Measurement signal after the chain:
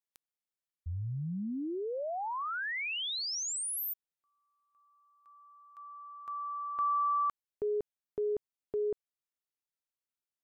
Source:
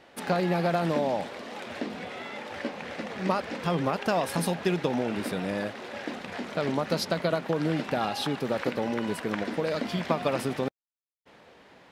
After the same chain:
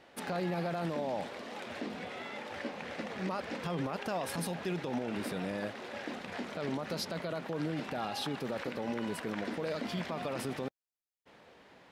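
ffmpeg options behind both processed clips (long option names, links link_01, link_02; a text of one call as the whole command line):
ffmpeg -i in.wav -af "alimiter=limit=-22.5dB:level=0:latency=1:release=32,volume=-4dB" out.wav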